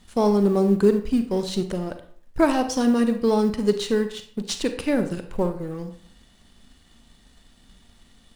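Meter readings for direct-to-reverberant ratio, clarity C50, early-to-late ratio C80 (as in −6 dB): 8.0 dB, 10.0 dB, 14.0 dB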